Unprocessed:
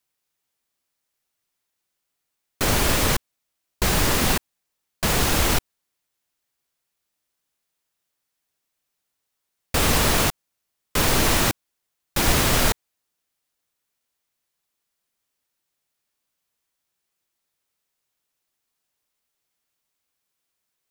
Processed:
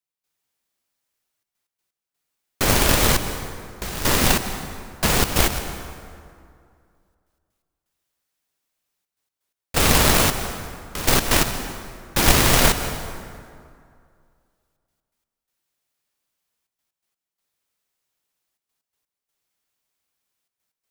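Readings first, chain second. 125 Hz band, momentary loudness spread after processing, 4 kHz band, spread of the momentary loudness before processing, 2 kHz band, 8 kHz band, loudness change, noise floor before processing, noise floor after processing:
+1.5 dB, 18 LU, +2.0 dB, 8 LU, +2.0 dB, +2.5 dB, +2.0 dB, −80 dBFS, below −85 dBFS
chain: in parallel at −10 dB: log-companded quantiser 2 bits
on the sum: gate pattern "..xxxxxxxxxx.x.x" 126 BPM −12 dB
dense smooth reverb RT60 2.3 s, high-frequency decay 0.6×, pre-delay 120 ms, DRR 9.5 dB

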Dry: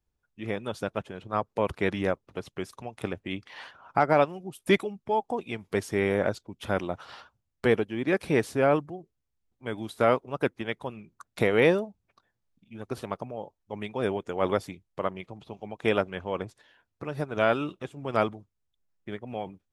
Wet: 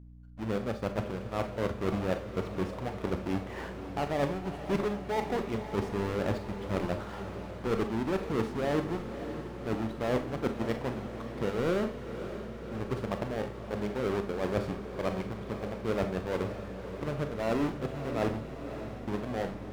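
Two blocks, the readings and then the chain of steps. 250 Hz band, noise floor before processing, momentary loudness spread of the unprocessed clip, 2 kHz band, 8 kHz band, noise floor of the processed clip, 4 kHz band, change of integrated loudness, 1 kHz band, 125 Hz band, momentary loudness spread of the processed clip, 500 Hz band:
−1.0 dB, −80 dBFS, 17 LU, −7.5 dB, −2.5 dB, −41 dBFS, −4.5 dB, −5.0 dB, −5.5 dB, +0.5 dB, 8 LU, −4.5 dB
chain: each half-wave held at its own peak
low-pass filter 1,400 Hz 6 dB per octave
reversed playback
downward compressor 6 to 1, threshold −28 dBFS, peak gain reduction 14.5 dB
reversed playback
mains hum 60 Hz, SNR 15 dB
on a send: feedback delay with all-pass diffusion 567 ms, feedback 69%, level −10 dB
on the sum: four-comb reverb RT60 0.34 s, combs from 28 ms, DRR 7.5 dB

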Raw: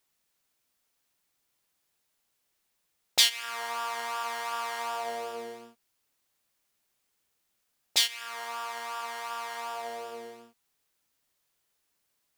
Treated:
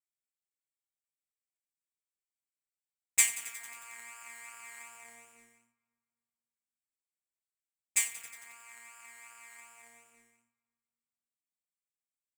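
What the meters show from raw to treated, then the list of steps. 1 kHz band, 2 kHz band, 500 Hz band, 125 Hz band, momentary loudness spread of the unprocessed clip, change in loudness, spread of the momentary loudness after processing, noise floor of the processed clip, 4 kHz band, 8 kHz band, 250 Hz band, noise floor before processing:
−21.0 dB, −4.5 dB, −25.0 dB, can't be measured, 17 LU, 0.0 dB, 22 LU, below −85 dBFS, −18.0 dB, +3.0 dB, below −15 dB, −77 dBFS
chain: drawn EQ curve 110 Hz 0 dB, 250 Hz −4 dB, 410 Hz −20 dB, 1,500 Hz −7 dB, 2,300 Hz +8 dB, 3,400 Hz −21 dB, 5,400 Hz −14 dB, 7,700 Hz +13 dB, 11,000 Hz 0 dB
power curve on the samples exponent 1.4
on a send: feedback echo with a low-pass in the loop 261 ms, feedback 49%, low-pass 2,000 Hz, level −20 dB
on the sum: feedback echo at a low word length 90 ms, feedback 80%, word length 6 bits, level −14.5 dB

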